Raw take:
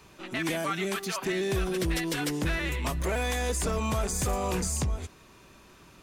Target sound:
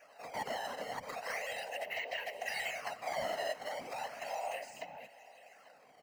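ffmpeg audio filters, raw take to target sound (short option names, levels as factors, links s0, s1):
-filter_complex "[0:a]asplit=3[s0][s1][s2];[s0]bandpass=f=530:t=q:w=8,volume=1[s3];[s1]bandpass=f=1840:t=q:w=8,volume=0.501[s4];[s2]bandpass=f=2480:t=q:w=8,volume=0.355[s5];[s3][s4][s5]amix=inputs=3:normalize=0,lowshelf=f=170:g=10.5,acrossover=split=510[s6][s7];[s6]acompressor=threshold=0.00112:ratio=6[s8];[s8][s7]amix=inputs=2:normalize=0,acrusher=samples=11:mix=1:aa=0.000001:lfo=1:lforange=17.6:lforate=0.36,afreqshift=160,asplit=2[s9][s10];[s10]highpass=f=720:p=1,volume=3.55,asoftclip=type=tanh:threshold=0.0299[s11];[s9][s11]amix=inputs=2:normalize=0,lowpass=f=4000:p=1,volume=0.501,afftfilt=real='hypot(re,im)*cos(2*PI*random(0))':imag='hypot(re,im)*sin(2*PI*random(1))':win_size=512:overlap=0.75,asuperstop=centerf=3500:order=4:qfactor=6.2,equalizer=f=350:t=o:w=0.23:g=-13.5,aecho=1:1:839:0.0891,volume=2.82"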